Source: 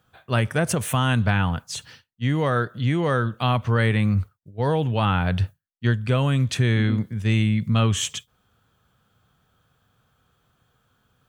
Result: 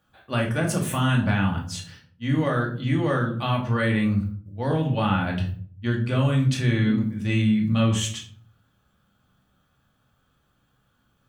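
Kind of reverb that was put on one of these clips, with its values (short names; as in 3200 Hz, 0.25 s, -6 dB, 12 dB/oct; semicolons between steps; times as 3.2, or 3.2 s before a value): shoebox room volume 450 m³, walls furnished, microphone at 2.4 m; gain -5.5 dB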